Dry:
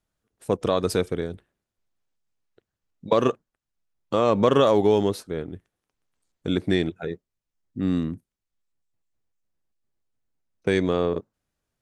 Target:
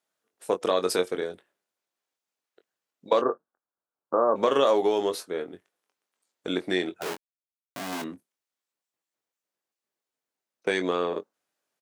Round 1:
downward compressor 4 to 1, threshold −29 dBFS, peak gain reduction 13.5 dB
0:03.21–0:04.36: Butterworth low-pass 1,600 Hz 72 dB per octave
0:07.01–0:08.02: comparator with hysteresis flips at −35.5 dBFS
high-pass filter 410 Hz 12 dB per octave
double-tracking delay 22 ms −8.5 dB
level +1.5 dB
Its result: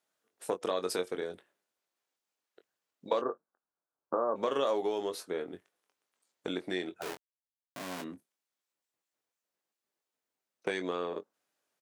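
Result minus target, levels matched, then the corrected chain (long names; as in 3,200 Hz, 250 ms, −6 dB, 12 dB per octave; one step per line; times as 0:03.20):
downward compressor: peak gain reduction +8.5 dB
downward compressor 4 to 1, threshold −17.5 dBFS, peak gain reduction 4.5 dB
0:03.21–0:04.36: Butterworth low-pass 1,600 Hz 72 dB per octave
0:07.01–0:08.02: comparator with hysteresis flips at −35.5 dBFS
high-pass filter 410 Hz 12 dB per octave
double-tracking delay 22 ms −8.5 dB
level +1.5 dB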